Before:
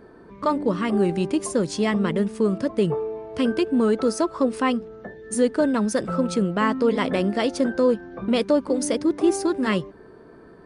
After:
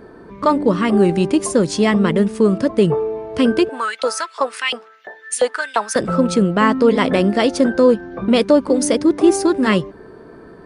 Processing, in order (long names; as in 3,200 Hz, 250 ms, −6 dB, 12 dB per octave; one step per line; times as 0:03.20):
0:03.69–0:05.96: auto-filter high-pass saw up 2.9 Hz 660–3,300 Hz
level +7 dB